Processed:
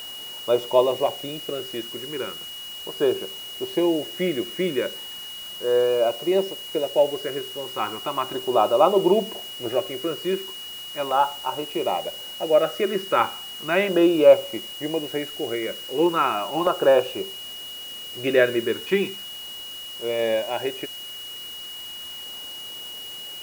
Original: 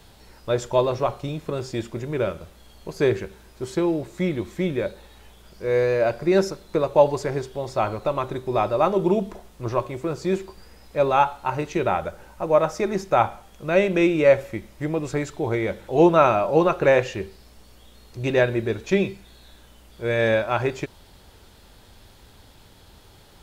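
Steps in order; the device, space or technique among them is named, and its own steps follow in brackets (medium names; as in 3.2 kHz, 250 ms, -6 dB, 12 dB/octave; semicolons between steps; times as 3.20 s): shortwave radio (band-pass 310–2500 Hz; tremolo 0.22 Hz, depth 47%; LFO notch saw down 0.36 Hz 460–2400 Hz; whistle 2.9 kHz -39 dBFS; white noise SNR 20 dB); trim +4.5 dB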